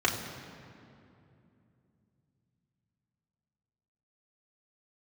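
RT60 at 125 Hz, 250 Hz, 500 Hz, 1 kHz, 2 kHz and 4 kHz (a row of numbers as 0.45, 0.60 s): 4.6, 4.0, 3.0, 2.5, 2.2, 1.6 s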